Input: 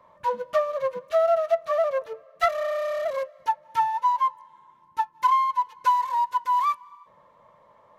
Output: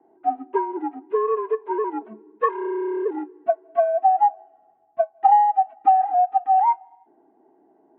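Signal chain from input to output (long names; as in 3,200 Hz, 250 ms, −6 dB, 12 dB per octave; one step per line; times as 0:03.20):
envelope filter 450–1,100 Hz, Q 2.1, up, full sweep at −19 dBFS
single-sideband voice off tune −230 Hz 530–3,100 Hz
level +6 dB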